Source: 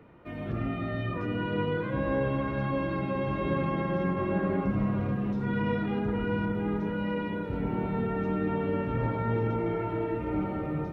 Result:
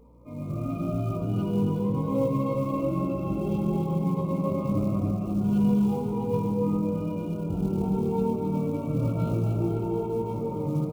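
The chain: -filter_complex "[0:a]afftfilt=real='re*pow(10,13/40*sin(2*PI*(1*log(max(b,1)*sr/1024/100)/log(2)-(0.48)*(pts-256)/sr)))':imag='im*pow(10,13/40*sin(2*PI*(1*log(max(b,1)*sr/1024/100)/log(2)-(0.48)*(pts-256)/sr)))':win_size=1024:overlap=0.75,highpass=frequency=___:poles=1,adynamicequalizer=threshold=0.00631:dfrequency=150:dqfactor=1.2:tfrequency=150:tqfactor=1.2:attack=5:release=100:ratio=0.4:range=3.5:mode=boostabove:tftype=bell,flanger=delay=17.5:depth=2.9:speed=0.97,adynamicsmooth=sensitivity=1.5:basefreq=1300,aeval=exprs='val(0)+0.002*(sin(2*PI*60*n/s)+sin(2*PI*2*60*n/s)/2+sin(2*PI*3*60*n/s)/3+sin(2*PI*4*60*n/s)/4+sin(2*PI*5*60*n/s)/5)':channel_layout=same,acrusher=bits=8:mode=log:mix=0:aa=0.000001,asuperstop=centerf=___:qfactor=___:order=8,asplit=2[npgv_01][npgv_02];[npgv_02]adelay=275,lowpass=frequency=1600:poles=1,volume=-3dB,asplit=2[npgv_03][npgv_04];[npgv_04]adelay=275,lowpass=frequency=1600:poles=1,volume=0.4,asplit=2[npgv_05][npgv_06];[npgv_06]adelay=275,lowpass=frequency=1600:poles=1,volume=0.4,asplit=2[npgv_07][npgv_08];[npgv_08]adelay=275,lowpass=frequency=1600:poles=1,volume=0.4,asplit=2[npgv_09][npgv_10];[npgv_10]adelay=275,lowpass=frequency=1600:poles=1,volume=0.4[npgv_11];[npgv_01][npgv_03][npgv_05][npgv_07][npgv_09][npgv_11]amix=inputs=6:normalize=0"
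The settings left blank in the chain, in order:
85, 1700, 1.9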